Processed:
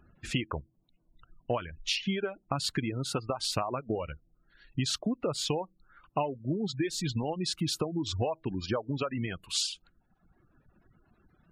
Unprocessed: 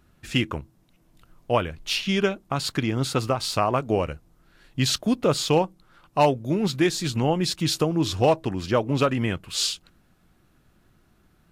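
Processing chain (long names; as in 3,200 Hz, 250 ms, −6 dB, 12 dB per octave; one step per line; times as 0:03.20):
gate on every frequency bin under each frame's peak −25 dB strong
downward compressor 16 to 1, threshold −26 dBFS, peak gain reduction 13.5 dB
reverb reduction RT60 1.5 s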